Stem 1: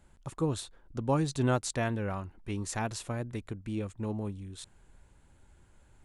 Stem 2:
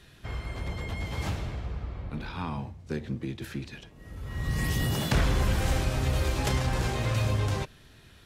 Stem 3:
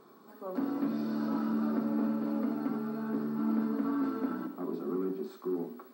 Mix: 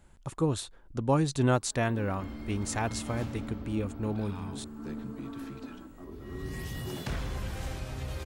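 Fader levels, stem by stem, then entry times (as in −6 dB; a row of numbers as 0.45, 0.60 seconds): +2.5, −10.0, −10.0 decibels; 0.00, 1.95, 1.40 seconds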